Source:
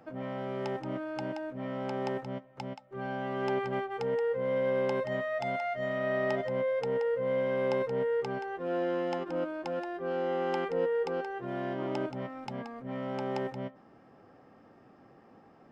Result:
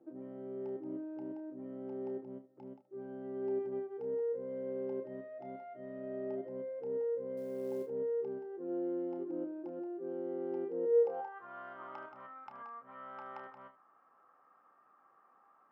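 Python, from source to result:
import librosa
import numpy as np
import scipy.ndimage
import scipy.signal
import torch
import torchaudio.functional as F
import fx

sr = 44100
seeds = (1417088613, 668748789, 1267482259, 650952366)

y = fx.filter_sweep_bandpass(x, sr, from_hz=340.0, to_hz=1200.0, start_s=10.83, end_s=11.39, q=5.6)
y = fx.quant_float(y, sr, bits=4, at=(7.37, 7.87))
y = fx.room_early_taps(y, sr, ms=(30, 75), db=(-9.0, -15.5))
y = F.gain(torch.from_numpy(y), 3.0).numpy()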